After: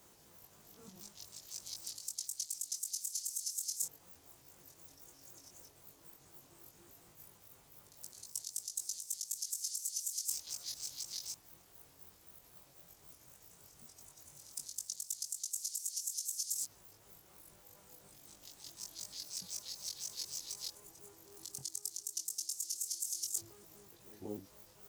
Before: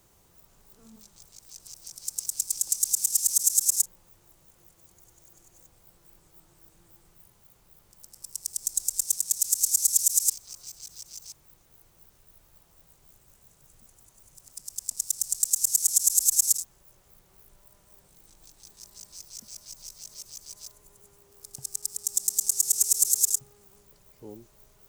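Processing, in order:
pitch shifter gated in a rhythm −3.5 semitones, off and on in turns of 125 ms
high-pass filter 130 Hz 6 dB per octave
reversed playback
downward compressor 16 to 1, threshold −35 dBFS, peak gain reduction 20.5 dB
reversed playback
backwards echo 177 ms −18 dB
chorus effect 0.12 Hz, delay 19.5 ms, depth 2.7 ms
level +4 dB

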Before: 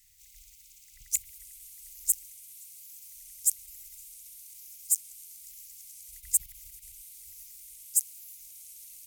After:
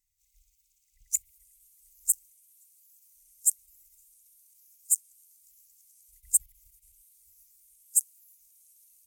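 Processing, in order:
every bin expanded away from the loudest bin 1.5 to 1
level +1 dB

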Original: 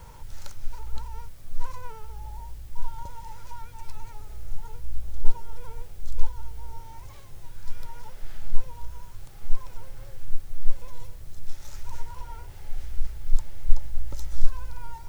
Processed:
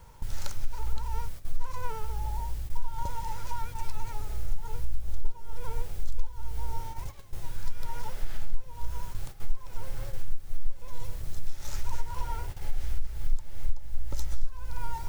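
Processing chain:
noise gate −38 dBFS, range −12 dB
downward compressor 6 to 1, threshold −24 dBFS, peak gain reduction 18.5 dB
level +6 dB

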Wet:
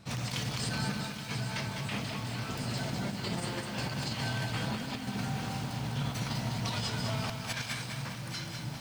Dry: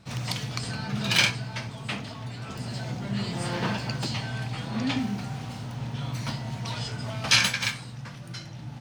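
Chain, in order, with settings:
high-shelf EQ 11,000 Hz +6 dB
hum removal 62.47 Hz, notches 2
compressor whose output falls as the input rises −32 dBFS, ratio −0.5
feedback echo with a high-pass in the loop 825 ms, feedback 70%, level −11 dB
feedback echo at a low word length 203 ms, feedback 55%, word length 8 bits, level −5 dB
level −3 dB

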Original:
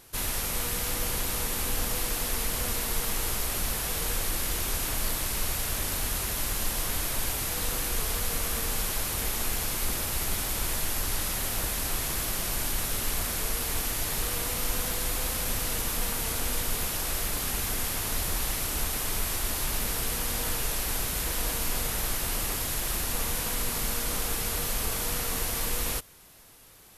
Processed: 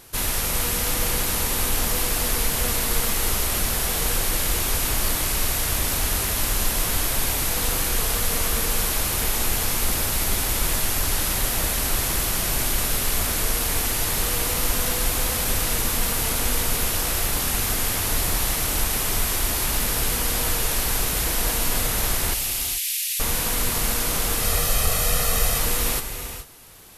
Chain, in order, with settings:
0:22.34–0:23.20: Butterworth high-pass 2,200 Hz 36 dB per octave
0:24.42–0:25.58: comb filter 1.6 ms, depth 63%
reverb whose tail is shaped and stops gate 460 ms rising, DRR 7.5 dB
level +6 dB

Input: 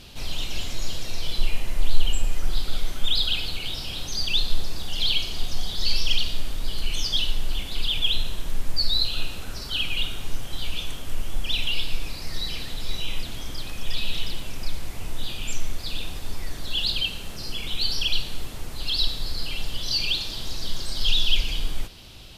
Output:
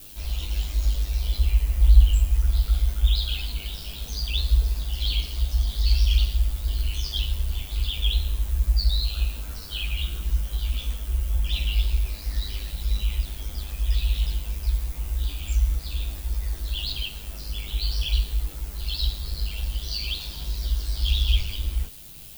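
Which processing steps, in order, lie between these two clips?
background noise violet −38 dBFS
ring modulation 51 Hz
multi-voice chorus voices 6, 0.18 Hz, delay 17 ms, depth 4 ms

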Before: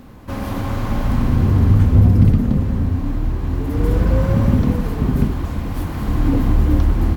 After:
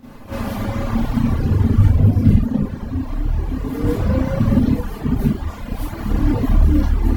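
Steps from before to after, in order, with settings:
echo ahead of the sound 220 ms −19 dB
four-comb reverb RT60 0.4 s, combs from 27 ms, DRR −10 dB
reverb reduction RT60 1.9 s
level −7.5 dB

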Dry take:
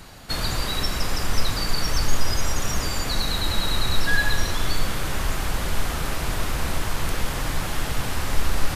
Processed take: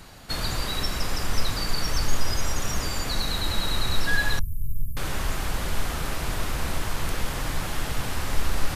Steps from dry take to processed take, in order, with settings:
0:04.39–0:04.97: inverse Chebyshev band-stop filter 570–4,100 Hz, stop band 70 dB
level −2.5 dB

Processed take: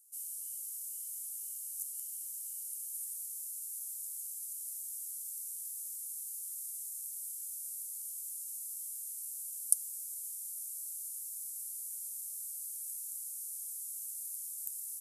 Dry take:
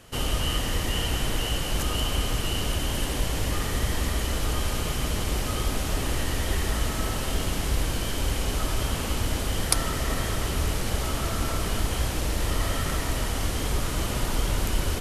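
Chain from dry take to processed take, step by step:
inverse Chebyshev high-pass filter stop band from 1,700 Hz, stop band 80 dB

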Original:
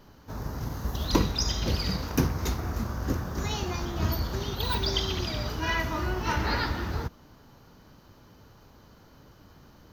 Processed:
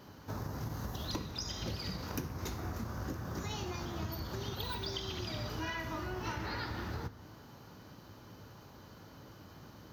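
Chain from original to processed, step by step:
high-pass filter 75 Hz
downward compressor 6 to 1, threshold −38 dBFS, peak gain reduction 19.5 dB
convolution reverb RT60 1.1 s, pre-delay 4 ms, DRR 11.5 dB
level +1 dB

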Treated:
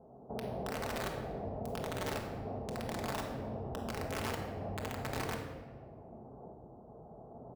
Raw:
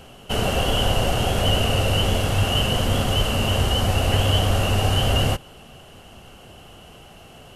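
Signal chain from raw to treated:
Butterworth low-pass 900 Hz 36 dB per octave
brickwall limiter −17 dBFS, peak gain reduction 9 dB
high-pass filter 40 Hz 24 dB per octave
flanger 1.7 Hz, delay 5.5 ms, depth 3.4 ms, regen +78%
single-tap delay 151 ms −23 dB
shaped tremolo saw up 0.92 Hz, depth 55%
wrap-around overflow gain 24 dB
downward compressor 2 to 1, threshold −43 dBFS, peak gain reduction 8.5 dB
low-shelf EQ 150 Hz −10.5 dB
rectangular room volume 1,200 cubic metres, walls mixed, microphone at 1.5 metres
level +1.5 dB

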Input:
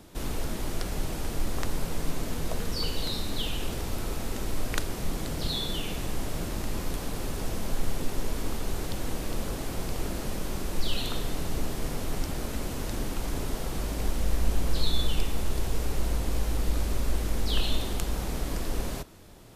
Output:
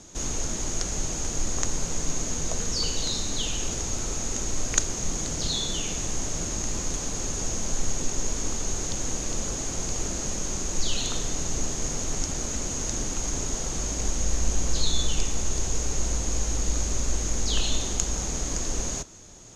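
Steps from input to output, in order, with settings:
low-pass with resonance 6,600 Hz, resonance Q 15

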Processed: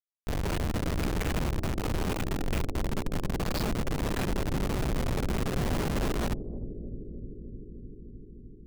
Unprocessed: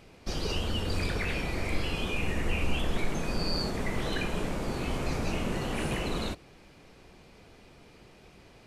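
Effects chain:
comparator with hysteresis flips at −31 dBFS
bucket-brigade delay 303 ms, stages 1,024, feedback 82%, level −10.5 dB
level +2 dB

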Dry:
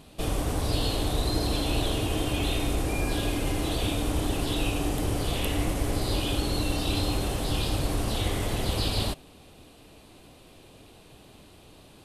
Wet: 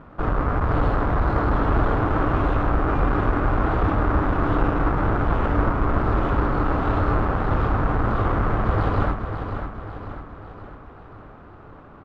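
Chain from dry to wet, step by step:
each half-wave held at its own peak
low-pass with resonance 1,300 Hz, resonance Q 3.1
on a send: repeating echo 546 ms, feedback 50%, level −8 dB

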